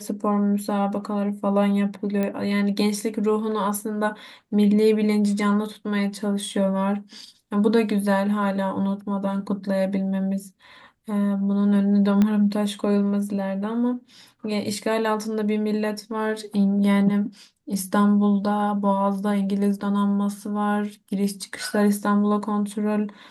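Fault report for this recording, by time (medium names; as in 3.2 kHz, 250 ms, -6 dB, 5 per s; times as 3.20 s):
2.23 s: pop -14 dBFS
12.22 s: pop -10 dBFS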